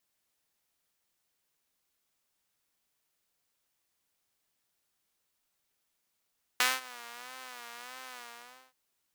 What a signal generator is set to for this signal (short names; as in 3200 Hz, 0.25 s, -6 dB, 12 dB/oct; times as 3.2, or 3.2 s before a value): synth patch with vibrato B3, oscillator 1 saw, oscillator 2 square, interval -12 st, detune 23 cents, oscillator 2 level -12.5 dB, noise -19 dB, filter highpass, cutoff 850 Hz, Q 0.93, filter envelope 1 oct, attack 2.3 ms, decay 0.20 s, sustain -23 dB, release 0.56 s, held 1.57 s, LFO 1.6 Hz, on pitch 82 cents